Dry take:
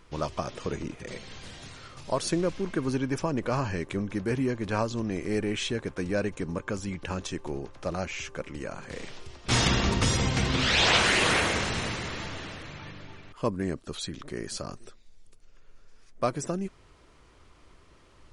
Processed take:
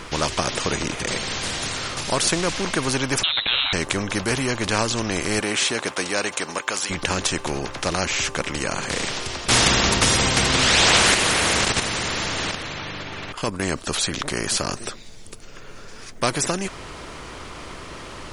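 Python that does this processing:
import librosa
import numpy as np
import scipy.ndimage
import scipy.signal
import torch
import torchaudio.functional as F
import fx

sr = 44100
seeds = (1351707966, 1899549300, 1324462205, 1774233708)

y = fx.freq_invert(x, sr, carrier_hz=3900, at=(3.23, 3.73))
y = fx.highpass(y, sr, hz=fx.line((5.39, 230.0), (6.89, 940.0)), slope=12, at=(5.39, 6.89), fade=0.02)
y = fx.level_steps(y, sr, step_db=10, at=(11.14, 13.63))
y = fx.spectral_comp(y, sr, ratio=2.0)
y = y * 10.0 ** (7.0 / 20.0)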